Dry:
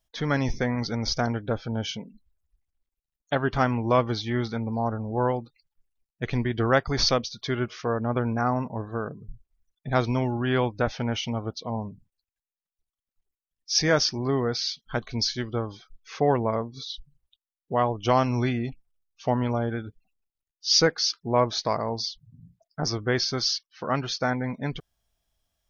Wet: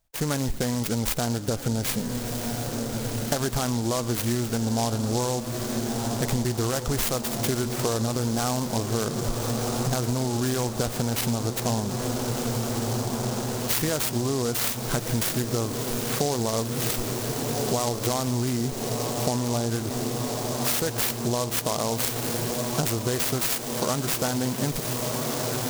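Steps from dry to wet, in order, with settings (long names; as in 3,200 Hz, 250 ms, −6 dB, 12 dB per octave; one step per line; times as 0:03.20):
automatic gain control gain up to 9.5 dB
brickwall limiter −10 dBFS, peak gain reduction 8 dB
feedback delay with all-pass diffusion 1,397 ms, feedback 78%, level −11.5 dB
downward compressor, threshold −26 dBFS, peak gain reduction 11.5 dB
feedback echo with a high-pass in the loop 119 ms, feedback 56%, level −18 dB
short delay modulated by noise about 5,700 Hz, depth 0.11 ms
level +3.5 dB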